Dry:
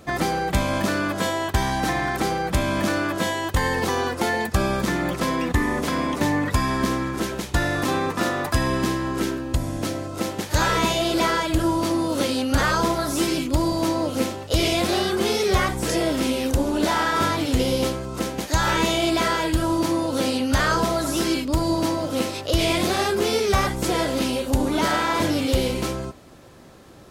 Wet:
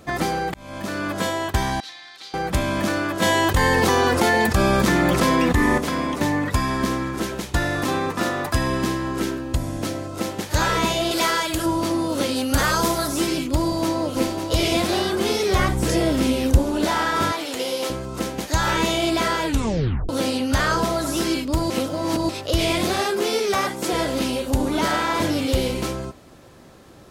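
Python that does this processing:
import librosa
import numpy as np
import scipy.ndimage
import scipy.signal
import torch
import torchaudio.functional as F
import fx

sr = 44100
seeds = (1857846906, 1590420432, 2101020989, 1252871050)

y = fx.bandpass_q(x, sr, hz=4000.0, q=3.4, at=(1.8, 2.34))
y = fx.env_flatten(y, sr, amount_pct=70, at=(3.22, 5.78))
y = fx.tilt_eq(y, sr, slope=2.0, at=(11.11, 11.66))
y = fx.high_shelf(y, sr, hz=fx.line((12.35, 10000.0), (13.06, 5100.0)), db=12.0, at=(12.35, 13.06), fade=0.02)
y = fx.echo_throw(y, sr, start_s=13.61, length_s=0.76, ms=550, feedback_pct=50, wet_db=-6.5)
y = fx.low_shelf(y, sr, hz=210.0, db=8.5, at=(15.59, 16.59))
y = fx.highpass(y, sr, hz=450.0, slope=12, at=(17.32, 17.9))
y = fx.highpass(y, sr, hz=220.0, slope=12, at=(23.01, 23.93))
y = fx.edit(y, sr, fx.fade_in_span(start_s=0.54, length_s=0.64),
    fx.tape_stop(start_s=19.47, length_s=0.62),
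    fx.reverse_span(start_s=21.7, length_s=0.59), tone=tone)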